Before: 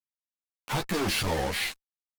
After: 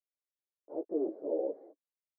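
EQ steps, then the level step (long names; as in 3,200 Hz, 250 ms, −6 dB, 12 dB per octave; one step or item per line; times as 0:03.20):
elliptic band-pass filter 300–620 Hz, stop band 70 dB
0.0 dB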